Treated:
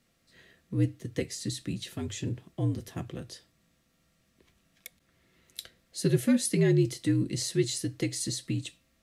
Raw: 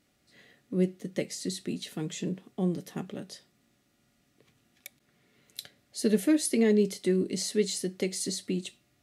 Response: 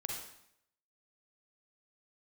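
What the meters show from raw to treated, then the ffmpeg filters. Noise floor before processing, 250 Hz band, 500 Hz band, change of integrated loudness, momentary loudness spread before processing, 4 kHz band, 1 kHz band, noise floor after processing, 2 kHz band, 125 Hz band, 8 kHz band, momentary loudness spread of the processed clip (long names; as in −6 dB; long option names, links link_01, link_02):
−71 dBFS, −1.0 dB, −3.0 dB, 0.0 dB, 19 LU, 0.0 dB, −2.0 dB, −71 dBFS, 0.0 dB, +6.5 dB, 0.0 dB, 19 LU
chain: -af "afreqshift=-62,bandreject=frequency=50:width_type=h:width=6,bandreject=frequency=100:width_type=h:width=6"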